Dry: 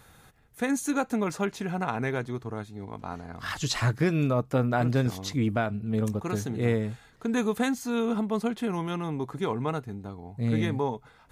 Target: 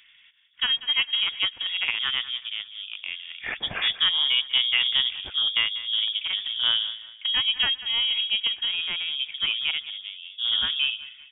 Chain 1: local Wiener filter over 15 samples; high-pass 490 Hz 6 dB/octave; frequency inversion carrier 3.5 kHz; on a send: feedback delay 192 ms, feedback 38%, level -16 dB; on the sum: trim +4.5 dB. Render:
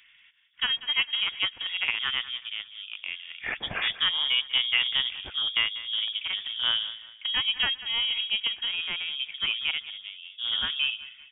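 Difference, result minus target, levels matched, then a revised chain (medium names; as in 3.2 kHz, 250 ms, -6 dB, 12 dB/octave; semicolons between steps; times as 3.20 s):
250 Hz band +3.0 dB
local Wiener filter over 15 samples; high-pass 230 Hz 6 dB/octave; frequency inversion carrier 3.5 kHz; on a send: feedback delay 192 ms, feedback 38%, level -16 dB; on the sum: trim +4.5 dB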